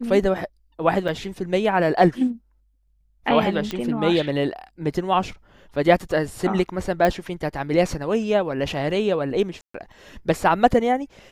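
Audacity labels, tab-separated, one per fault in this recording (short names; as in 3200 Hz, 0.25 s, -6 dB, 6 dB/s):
1.080000	1.090000	gap 5.7 ms
3.710000	3.710000	pop -13 dBFS
7.050000	7.050000	pop -8 dBFS
9.610000	9.740000	gap 0.134 s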